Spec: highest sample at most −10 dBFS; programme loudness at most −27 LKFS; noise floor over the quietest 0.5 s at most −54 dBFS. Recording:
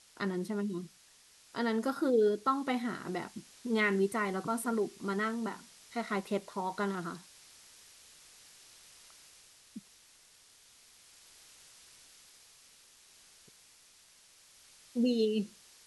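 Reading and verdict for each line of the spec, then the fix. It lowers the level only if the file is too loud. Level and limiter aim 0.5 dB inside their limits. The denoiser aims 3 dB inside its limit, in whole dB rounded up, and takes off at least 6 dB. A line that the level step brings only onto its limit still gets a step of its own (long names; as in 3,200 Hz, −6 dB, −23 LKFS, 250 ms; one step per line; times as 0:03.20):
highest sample −17.0 dBFS: in spec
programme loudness −33.5 LKFS: in spec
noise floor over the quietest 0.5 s −61 dBFS: in spec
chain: no processing needed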